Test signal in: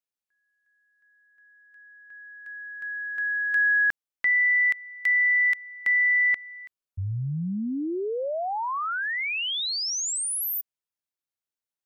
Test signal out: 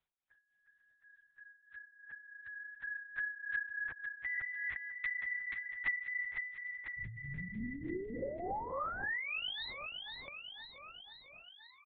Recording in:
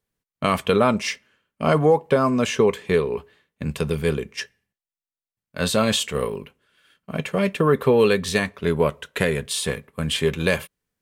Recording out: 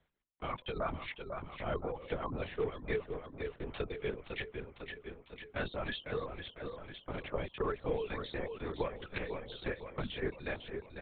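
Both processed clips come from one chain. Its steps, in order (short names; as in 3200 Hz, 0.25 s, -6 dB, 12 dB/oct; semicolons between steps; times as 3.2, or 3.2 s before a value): reverb removal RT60 1.1 s; notch 2800 Hz, Q 11; reverb removal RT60 1 s; HPF 180 Hz 12 dB/oct; de-hum 251.3 Hz, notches 4; compressor 2:1, threshold -36 dBFS; tremolo 3.4 Hz, depth 65%; feedback echo 0.505 s, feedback 52%, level -8.5 dB; LPC vocoder at 8 kHz whisper; three-band squash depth 40%; gain -2 dB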